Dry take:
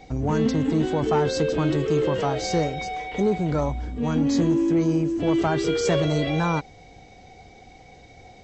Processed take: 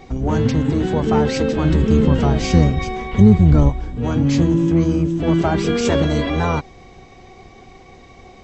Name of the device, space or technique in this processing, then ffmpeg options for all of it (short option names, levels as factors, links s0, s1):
octave pedal: -filter_complex "[0:a]asplit=2[s0][s1];[s1]asetrate=22050,aresample=44100,atempo=2,volume=0.891[s2];[s0][s2]amix=inputs=2:normalize=0,asplit=3[s3][s4][s5];[s3]afade=t=out:st=1.68:d=0.02[s6];[s4]asubboost=boost=4:cutoff=240,afade=t=in:st=1.68:d=0.02,afade=t=out:st=3.68:d=0.02[s7];[s5]afade=t=in:st=3.68:d=0.02[s8];[s6][s7][s8]amix=inputs=3:normalize=0,volume=1.33"